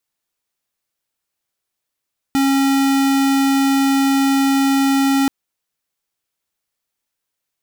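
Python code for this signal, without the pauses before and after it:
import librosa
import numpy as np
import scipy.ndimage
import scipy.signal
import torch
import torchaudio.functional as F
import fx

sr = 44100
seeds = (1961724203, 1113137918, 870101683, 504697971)

y = fx.tone(sr, length_s=2.93, wave='square', hz=273.0, level_db=-15.0)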